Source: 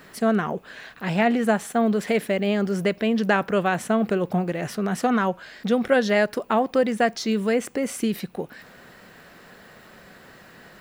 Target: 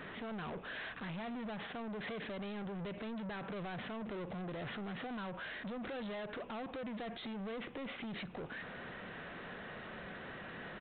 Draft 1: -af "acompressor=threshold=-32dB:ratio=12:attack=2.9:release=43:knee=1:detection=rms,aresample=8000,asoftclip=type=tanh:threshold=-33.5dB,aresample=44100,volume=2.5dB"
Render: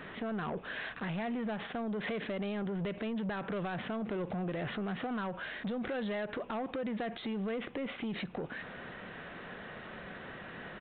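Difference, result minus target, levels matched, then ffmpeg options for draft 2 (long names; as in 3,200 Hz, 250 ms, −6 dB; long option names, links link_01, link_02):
soft clipping: distortion −8 dB
-af "acompressor=threshold=-32dB:ratio=12:attack=2.9:release=43:knee=1:detection=rms,aresample=8000,asoftclip=type=tanh:threshold=-43dB,aresample=44100,volume=2.5dB"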